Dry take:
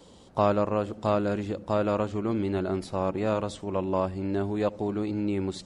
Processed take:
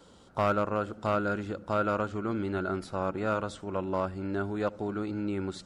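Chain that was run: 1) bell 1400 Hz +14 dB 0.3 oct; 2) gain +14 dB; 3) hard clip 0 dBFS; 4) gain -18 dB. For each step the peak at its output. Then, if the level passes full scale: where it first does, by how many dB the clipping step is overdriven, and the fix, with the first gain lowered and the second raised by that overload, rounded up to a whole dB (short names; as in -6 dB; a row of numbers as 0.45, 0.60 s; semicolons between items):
-8.0, +6.0, 0.0, -18.0 dBFS; step 2, 6.0 dB; step 2 +8 dB, step 4 -12 dB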